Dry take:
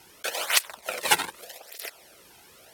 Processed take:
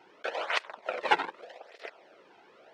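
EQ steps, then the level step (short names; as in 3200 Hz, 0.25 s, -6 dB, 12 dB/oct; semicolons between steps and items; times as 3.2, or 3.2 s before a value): HPF 330 Hz 12 dB/oct; tape spacing loss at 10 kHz 41 dB; +4.0 dB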